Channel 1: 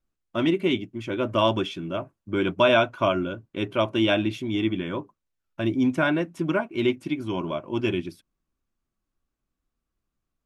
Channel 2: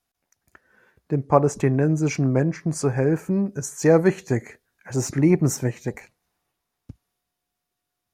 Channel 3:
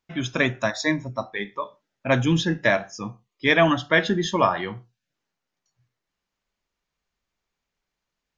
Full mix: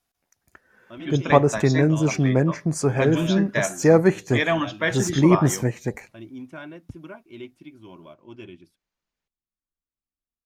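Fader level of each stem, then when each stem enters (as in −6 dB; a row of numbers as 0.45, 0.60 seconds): −16.0, +1.0, −4.5 decibels; 0.55, 0.00, 0.90 seconds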